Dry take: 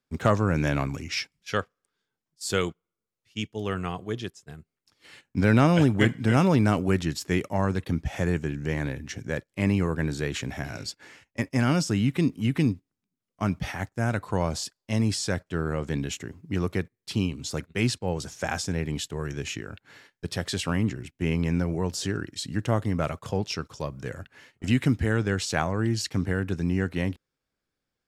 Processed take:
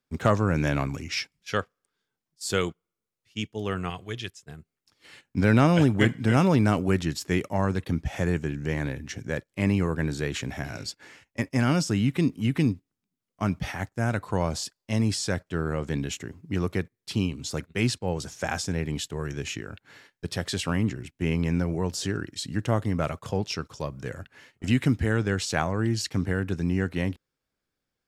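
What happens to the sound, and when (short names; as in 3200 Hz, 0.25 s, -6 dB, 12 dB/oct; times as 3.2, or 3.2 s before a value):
3.9–4.42 EQ curve 100 Hz 0 dB, 210 Hz -7 dB, 1100 Hz -3 dB, 2400 Hz +6 dB, 4600 Hz +2 dB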